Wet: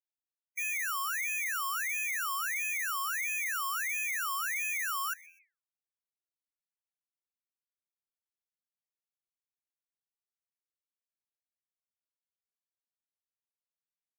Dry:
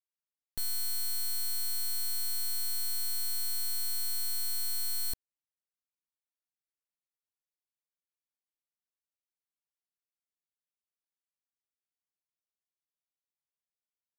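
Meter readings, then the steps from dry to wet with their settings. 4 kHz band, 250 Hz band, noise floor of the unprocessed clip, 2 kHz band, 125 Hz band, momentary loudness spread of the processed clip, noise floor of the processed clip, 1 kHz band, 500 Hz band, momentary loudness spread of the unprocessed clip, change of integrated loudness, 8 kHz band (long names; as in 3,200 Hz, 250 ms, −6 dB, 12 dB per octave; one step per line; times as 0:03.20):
−7.5 dB, below −35 dB, below −85 dBFS, +21.0 dB, can't be measured, 2 LU, below −85 dBFS, +22.5 dB, below −30 dB, 2 LU, +0.5 dB, −1.5 dB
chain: spectral peaks only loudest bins 32
echo with shifted repeats 126 ms, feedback 33%, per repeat −84 Hz, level −21.5 dB
ring modulator whose carrier an LFO sweeps 1,800 Hz, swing 40%, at 1.5 Hz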